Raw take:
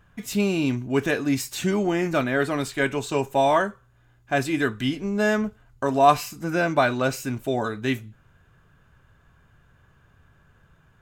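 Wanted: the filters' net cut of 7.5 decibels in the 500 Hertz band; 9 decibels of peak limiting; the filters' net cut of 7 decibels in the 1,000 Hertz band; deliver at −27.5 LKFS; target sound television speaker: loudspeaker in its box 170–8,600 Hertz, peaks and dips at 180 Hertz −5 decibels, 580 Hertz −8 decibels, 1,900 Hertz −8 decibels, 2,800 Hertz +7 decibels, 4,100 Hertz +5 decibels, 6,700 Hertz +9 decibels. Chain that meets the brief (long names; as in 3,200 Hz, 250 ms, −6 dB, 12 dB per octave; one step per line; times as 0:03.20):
parametric band 500 Hz −5 dB
parametric band 1,000 Hz −5.5 dB
brickwall limiter −16.5 dBFS
loudspeaker in its box 170–8,600 Hz, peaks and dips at 180 Hz −5 dB, 580 Hz −8 dB, 1,900 Hz −8 dB, 2,800 Hz +7 dB, 4,100 Hz +5 dB, 6,700 Hz +9 dB
level +1.5 dB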